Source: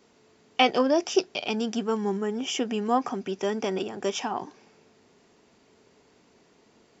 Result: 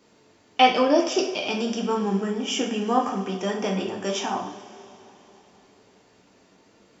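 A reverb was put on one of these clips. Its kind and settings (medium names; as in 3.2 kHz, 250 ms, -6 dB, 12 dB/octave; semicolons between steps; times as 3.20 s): two-slope reverb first 0.49 s, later 3.6 s, from -18 dB, DRR -0.5 dB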